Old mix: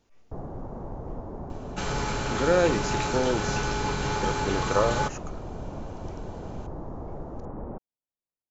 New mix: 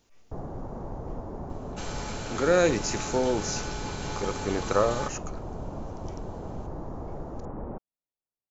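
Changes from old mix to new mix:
second sound -9.5 dB; master: add high shelf 3200 Hz +8 dB

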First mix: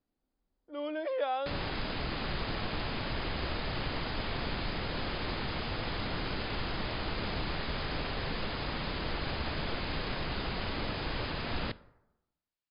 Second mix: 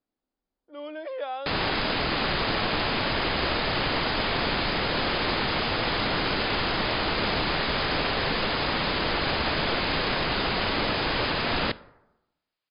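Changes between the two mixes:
background +11.5 dB; master: add low shelf 170 Hz -10.5 dB

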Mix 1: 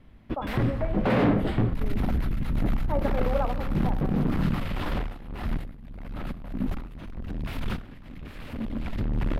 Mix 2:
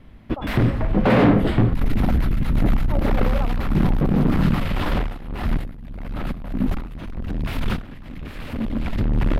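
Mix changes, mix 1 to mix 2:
background +7.5 dB; reverb: off

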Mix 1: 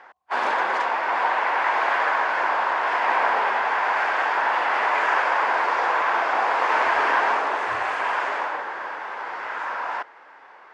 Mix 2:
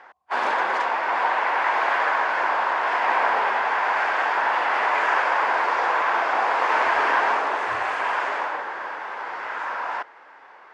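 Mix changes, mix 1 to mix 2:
speech +7.0 dB; reverb: off

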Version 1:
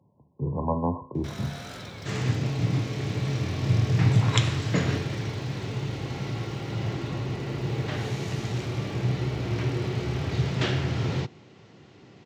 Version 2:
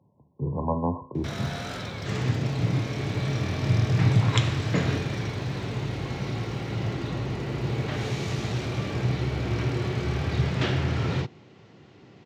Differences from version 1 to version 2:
first sound +6.0 dB; master: add high shelf 6800 Hz -8 dB

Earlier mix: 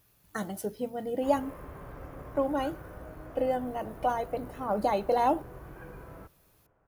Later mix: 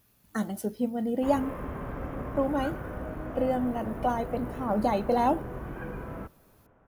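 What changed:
background +7.5 dB; master: add bell 230 Hz +14.5 dB 0.24 oct

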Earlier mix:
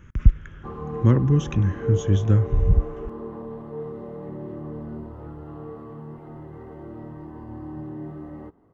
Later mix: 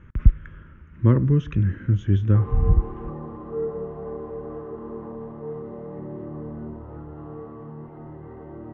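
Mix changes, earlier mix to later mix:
background: entry +1.70 s; master: add LPF 2400 Hz 12 dB/oct

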